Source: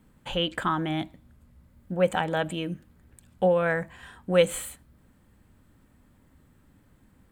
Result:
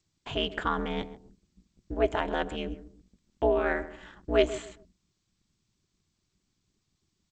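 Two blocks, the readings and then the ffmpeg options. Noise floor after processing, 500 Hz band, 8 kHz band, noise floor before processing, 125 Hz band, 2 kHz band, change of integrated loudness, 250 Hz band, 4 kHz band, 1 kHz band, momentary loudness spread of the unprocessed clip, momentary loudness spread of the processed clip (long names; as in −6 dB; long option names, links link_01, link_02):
−79 dBFS, −3.0 dB, −11.5 dB, −61 dBFS, −8.0 dB, −3.0 dB, −3.0 dB, −3.5 dB, −3.5 dB, −2.5 dB, 17 LU, 17 LU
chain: -filter_complex "[0:a]asplit=2[link_01][link_02];[link_02]adelay=136,lowpass=frequency=1100:poles=1,volume=-13dB,asplit=2[link_03][link_04];[link_04]adelay=136,lowpass=frequency=1100:poles=1,volume=0.28,asplit=2[link_05][link_06];[link_06]adelay=136,lowpass=frequency=1100:poles=1,volume=0.28[link_07];[link_01][link_03][link_05][link_07]amix=inputs=4:normalize=0,anlmdn=0.00158,aeval=exprs='val(0)*sin(2*PI*120*n/s)':channel_layout=same,agate=range=-13dB:threshold=-56dB:ratio=16:detection=peak" -ar 16000 -c:a g722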